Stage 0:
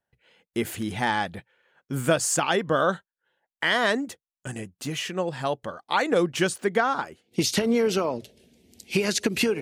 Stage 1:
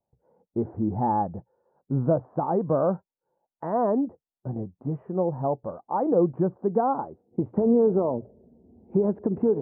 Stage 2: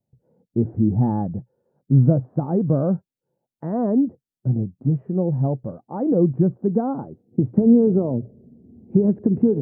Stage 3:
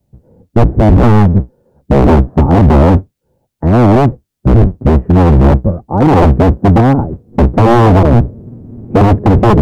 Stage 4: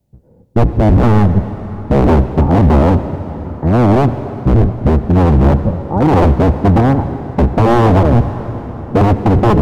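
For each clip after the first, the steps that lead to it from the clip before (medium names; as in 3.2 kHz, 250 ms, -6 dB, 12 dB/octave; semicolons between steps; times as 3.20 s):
steep low-pass 960 Hz 36 dB/octave; harmonic-percussive split harmonic +5 dB; in parallel at -2.5 dB: peak limiter -17 dBFS, peak gain reduction 8 dB; on the sum: trim -5 dB
ten-band graphic EQ 125 Hz +12 dB, 250 Hz +6 dB, 1 kHz -10 dB
octave divider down 1 oct, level +2 dB; in parallel at +2.5 dB: peak limiter -11 dBFS, peak gain reduction 9.5 dB; on the sum: wavefolder -8.5 dBFS; trim +7.5 dB
reverberation RT60 4.8 s, pre-delay 62 ms, DRR 10.5 dB; trim -3 dB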